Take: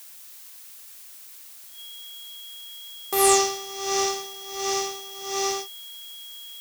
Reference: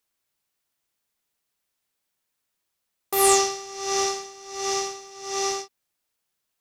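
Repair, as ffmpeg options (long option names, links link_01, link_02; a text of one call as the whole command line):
ffmpeg -i in.wav -af "bandreject=frequency=3300:width=30,afftdn=noise_reduction=30:noise_floor=-45" out.wav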